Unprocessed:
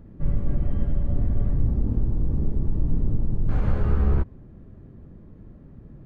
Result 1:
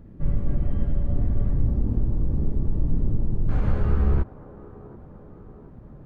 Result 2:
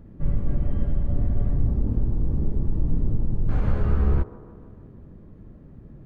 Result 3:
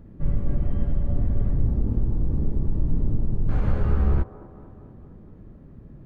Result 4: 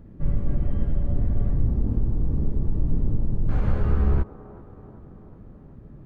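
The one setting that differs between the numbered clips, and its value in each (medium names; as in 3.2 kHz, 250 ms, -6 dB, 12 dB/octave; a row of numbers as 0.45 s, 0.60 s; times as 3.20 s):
feedback echo behind a band-pass, time: 731 ms, 153 ms, 231 ms, 382 ms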